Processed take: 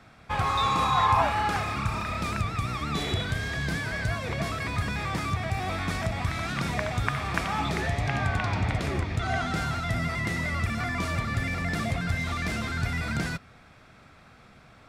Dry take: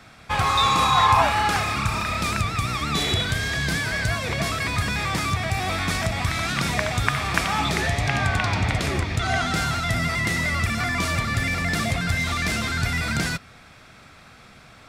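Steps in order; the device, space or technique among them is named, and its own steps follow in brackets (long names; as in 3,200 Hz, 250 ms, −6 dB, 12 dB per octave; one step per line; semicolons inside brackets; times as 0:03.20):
behind a face mask (high-shelf EQ 2,300 Hz −8 dB)
level −3.5 dB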